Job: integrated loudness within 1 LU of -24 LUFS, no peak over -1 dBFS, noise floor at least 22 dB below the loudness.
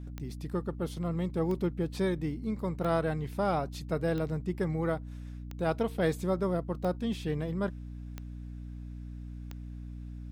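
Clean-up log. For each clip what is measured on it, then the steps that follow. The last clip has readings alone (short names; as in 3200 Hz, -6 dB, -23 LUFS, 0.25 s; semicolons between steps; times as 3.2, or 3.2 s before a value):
clicks 8; hum 60 Hz; harmonics up to 300 Hz; hum level -39 dBFS; loudness -32.5 LUFS; peak -16.5 dBFS; loudness target -24.0 LUFS
-> de-click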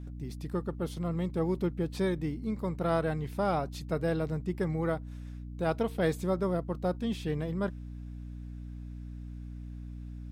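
clicks 0; hum 60 Hz; harmonics up to 300 Hz; hum level -39 dBFS
-> de-hum 60 Hz, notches 5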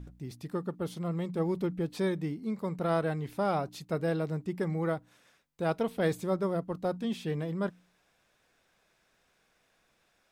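hum none; loudness -33.0 LUFS; peak -17.0 dBFS; loudness target -24.0 LUFS
-> gain +9 dB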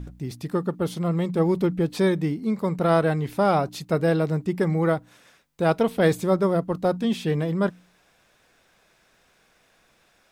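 loudness -24.0 LUFS; peak -8.0 dBFS; noise floor -63 dBFS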